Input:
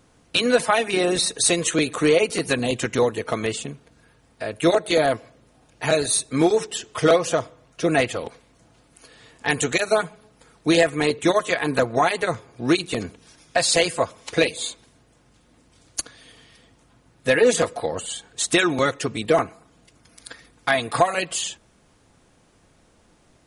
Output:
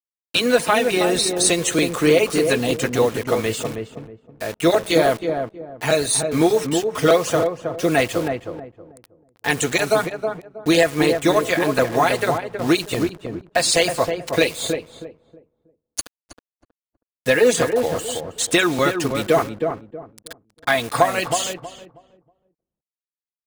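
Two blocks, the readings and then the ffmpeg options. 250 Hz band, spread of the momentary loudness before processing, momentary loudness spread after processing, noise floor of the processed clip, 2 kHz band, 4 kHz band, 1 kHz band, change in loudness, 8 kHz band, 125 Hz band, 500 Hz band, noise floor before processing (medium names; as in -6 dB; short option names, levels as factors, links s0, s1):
+3.0 dB, 12 LU, 13 LU, under -85 dBFS, +2.0 dB, +1.5 dB, +2.5 dB, +2.0 dB, +1.5 dB, +3.0 dB, +2.5 dB, -59 dBFS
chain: -filter_complex "[0:a]acrusher=bits=5:mix=0:aa=0.000001,asplit=2[s0][s1];[s1]adelay=319,lowpass=f=820:p=1,volume=0.631,asplit=2[s2][s3];[s3]adelay=319,lowpass=f=820:p=1,volume=0.29,asplit=2[s4][s5];[s5]adelay=319,lowpass=f=820:p=1,volume=0.29,asplit=2[s6][s7];[s7]adelay=319,lowpass=f=820:p=1,volume=0.29[s8];[s0][s2][s4][s6][s8]amix=inputs=5:normalize=0,volume=1.19"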